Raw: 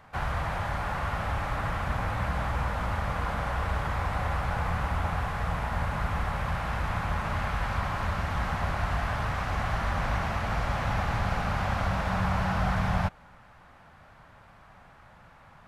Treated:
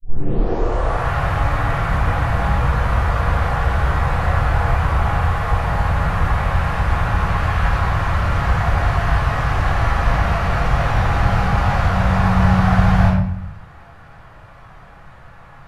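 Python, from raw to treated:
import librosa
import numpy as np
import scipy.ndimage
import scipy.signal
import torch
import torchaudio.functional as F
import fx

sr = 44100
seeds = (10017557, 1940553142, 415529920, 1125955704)

y = fx.tape_start_head(x, sr, length_s=1.08)
y = fx.room_shoebox(y, sr, seeds[0], volume_m3=160.0, walls='mixed', distance_m=3.6)
y = y * 10.0 ** (-3.0 / 20.0)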